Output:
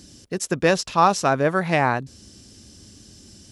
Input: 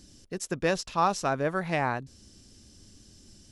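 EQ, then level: high-pass 61 Hz; +8.0 dB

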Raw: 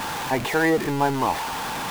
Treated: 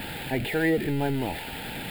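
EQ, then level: bass shelf 140 Hz +5 dB; static phaser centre 2.6 kHz, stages 4; -2.0 dB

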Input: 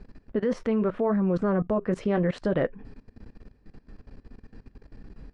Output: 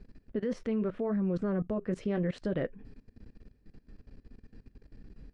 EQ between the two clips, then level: peaking EQ 960 Hz -7.5 dB 1.4 oct; -5.0 dB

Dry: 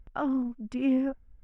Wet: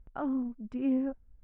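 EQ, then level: low-pass 1.1 kHz 6 dB/octave; -3.0 dB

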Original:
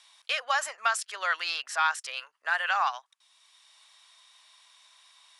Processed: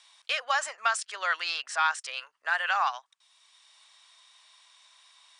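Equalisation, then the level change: brick-wall FIR low-pass 9.8 kHz; 0.0 dB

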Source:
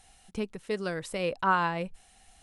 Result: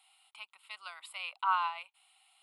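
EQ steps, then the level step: high-pass 970 Hz 24 dB/octave; treble shelf 7.5 kHz -5.5 dB; static phaser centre 1.7 kHz, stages 6; 0.0 dB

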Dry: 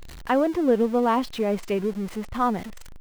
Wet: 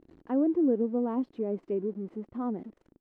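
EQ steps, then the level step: band-pass filter 310 Hz, Q 2.6; 0.0 dB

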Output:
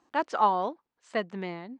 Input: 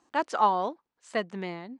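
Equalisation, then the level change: distance through air 75 m; 0.0 dB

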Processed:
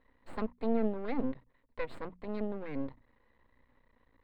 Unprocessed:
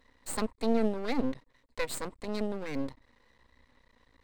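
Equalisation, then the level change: distance through air 460 m; hum notches 60/120/180/240 Hz; -2.0 dB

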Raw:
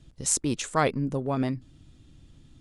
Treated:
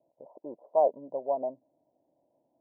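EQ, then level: resonant high-pass 600 Hz, resonance Q 6.2; rippled Chebyshev low-pass 1 kHz, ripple 3 dB; distance through air 390 m; -5.0 dB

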